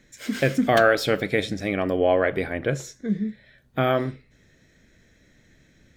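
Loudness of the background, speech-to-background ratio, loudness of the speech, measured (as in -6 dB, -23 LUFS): -36.0 LUFS, 12.5 dB, -23.5 LUFS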